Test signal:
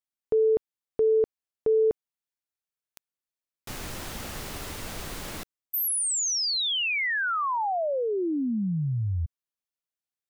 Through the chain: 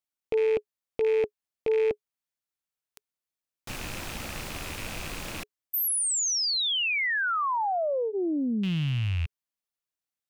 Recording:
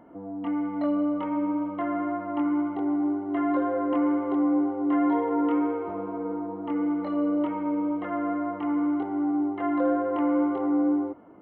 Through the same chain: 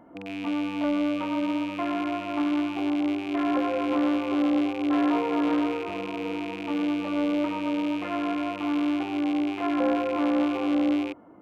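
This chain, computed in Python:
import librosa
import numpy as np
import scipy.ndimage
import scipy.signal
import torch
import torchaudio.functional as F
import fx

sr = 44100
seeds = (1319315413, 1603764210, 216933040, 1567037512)

y = fx.rattle_buzz(x, sr, strikes_db=-42.0, level_db=-27.0)
y = fx.notch(y, sr, hz=420.0, q=13.0)
y = fx.doppler_dist(y, sr, depth_ms=0.18)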